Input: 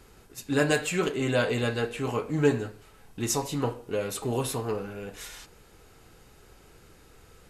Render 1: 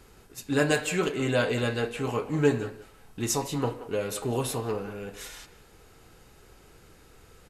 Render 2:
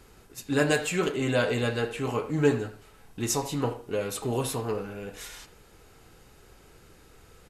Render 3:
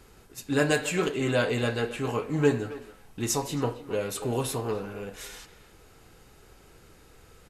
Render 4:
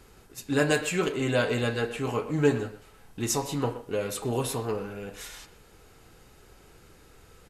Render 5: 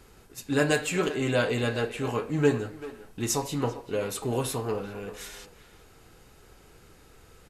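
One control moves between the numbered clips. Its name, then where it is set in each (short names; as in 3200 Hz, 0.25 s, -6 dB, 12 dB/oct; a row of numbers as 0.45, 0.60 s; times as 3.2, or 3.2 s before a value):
speakerphone echo, time: 180, 80, 270, 120, 390 ms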